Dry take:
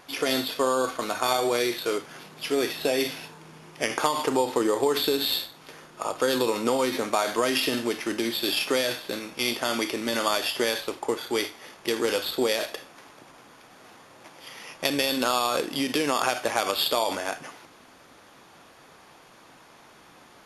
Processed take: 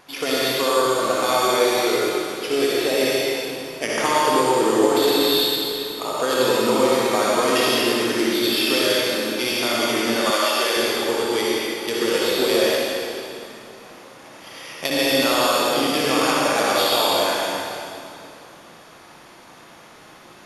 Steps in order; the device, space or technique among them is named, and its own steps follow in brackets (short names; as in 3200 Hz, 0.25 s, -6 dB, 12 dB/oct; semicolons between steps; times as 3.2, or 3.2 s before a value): tunnel (flutter echo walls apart 10.2 m, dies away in 0.39 s; reverb RT60 2.6 s, pre-delay 61 ms, DRR -5 dB); 10.3–10.77 HPF 410 Hz 12 dB/oct